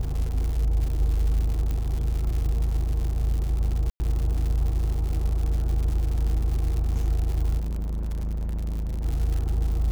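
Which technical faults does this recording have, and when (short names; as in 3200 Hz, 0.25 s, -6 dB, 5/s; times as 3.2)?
crackle 200/s -30 dBFS
1.71 pop -18 dBFS
3.9–4 gap 0.1 s
7.58–9.05 clipped -26 dBFS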